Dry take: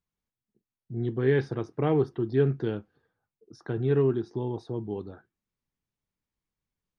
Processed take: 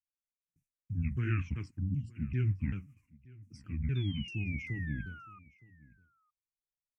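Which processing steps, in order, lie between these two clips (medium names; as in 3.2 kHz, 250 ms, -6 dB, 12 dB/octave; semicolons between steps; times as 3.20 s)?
sawtooth pitch modulation -10 st, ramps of 389 ms; gate with hold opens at -60 dBFS; FFT filter 150 Hz 0 dB, 660 Hz -29 dB, 2.5 kHz +10 dB, 3.7 kHz -22 dB, 5.8 kHz +9 dB; in parallel at +3 dB: compression, threshold -33 dBFS, peak gain reduction 9 dB; on the sum: painted sound fall, 3.95–5.39 s, 1.2–3.6 kHz -40 dBFS; rotary cabinet horn 0.6 Hz; spectral selection erased 1.79–2.16 s, 290–2700 Hz; delay 917 ms -23 dB; trim -4.5 dB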